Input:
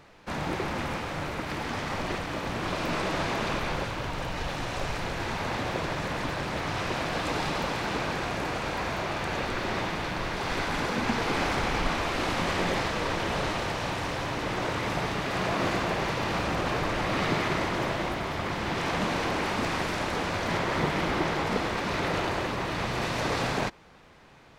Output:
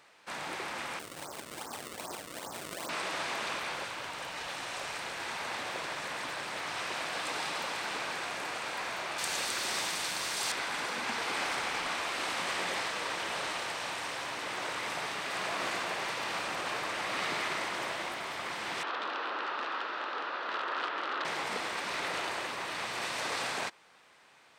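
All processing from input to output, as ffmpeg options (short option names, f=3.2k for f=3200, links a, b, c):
-filter_complex "[0:a]asettb=1/sr,asplit=3[a][b][c];[a]atrim=end=0.994[d];[b]atrim=start=0.99:end=2.89,asetpts=PTS-STARTPTS,afade=t=in:d=0.004:c=qsin,afade=t=out:st=1.896:d=0.004:c=qsin,lowpass=f=1.2k:w=0.5412,lowpass=f=1.2k:w=1.3066,acrusher=samples=31:mix=1:aa=0.000001:lfo=1:lforange=49.6:lforate=2.5[e];[c]atrim=start=2.886[f];[d][e]acrossfade=d=0.004:c1=hsin:c2=qsin[g];[g][f]acrossfade=d=0.004:c1=qsin:c2=hsin,asettb=1/sr,asplit=3[h][i][j];[h]atrim=end=9.184[k];[i]atrim=start=9.18:end=10.52,asetpts=PTS-STARTPTS,afade=t=in:d=0.004:c=qsin,afade=t=out:st=1.336:d=0.004:c=qsin,bass=f=250:g=2,treble=f=4k:g=14,aeval=exprs='sgn(val(0))*max(abs(val(0))-0.00112,0)':c=same[l];[j]atrim=start=10.516[m];[k][l]acrossfade=d=0.004:c1=hsin:c2=qsin[n];[n][m]acrossfade=d=0.004:c1=qsin:c2=hsin,asettb=1/sr,asplit=3[o][p][q];[o]atrim=end=18.834[r];[p]atrim=start=18.83:end=21.25,asetpts=PTS-STARTPTS,afade=t=in:d=0.004:c=qsin,afade=t=out:st=2.416:d=0.004:c=qsin,aeval=exprs='(mod(9.44*val(0)+1,2)-1)/9.44':c=same,highpass=f=280:w=0.5412,highpass=f=280:w=1.3066,equalizer=f=700:t=q:w=4:g=-3,equalizer=f=1.3k:t=q:w=4:g=6,equalizer=f=2.2k:t=q:w=4:g=-10,equalizer=f=3.2k:t=q:w=4:g=-3,lowpass=f=3.5k:w=0.5412,lowpass=f=3.5k:w=1.3066[s];[q]atrim=start=21.246[t];[r][s]acrossfade=d=0.004:c1=hsin:c2=qsin[u];[u][t]acrossfade=d=0.004:c1=qsin:c2=hsin,highpass=f=1.2k:p=1,equalizer=f=8.5k:t=o:w=0.25:g=8,volume=-1.5dB"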